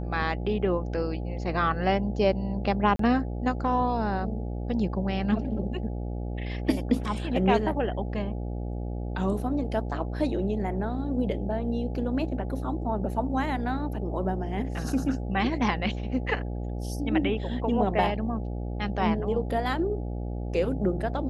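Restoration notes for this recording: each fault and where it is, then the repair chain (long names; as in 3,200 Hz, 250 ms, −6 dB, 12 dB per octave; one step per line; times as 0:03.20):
mains buzz 60 Hz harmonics 14 −32 dBFS
0:02.96–0:02.99: drop-out 33 ms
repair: hum removal 60 Hz, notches 14
repair the gap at 0:02.96, 33 ms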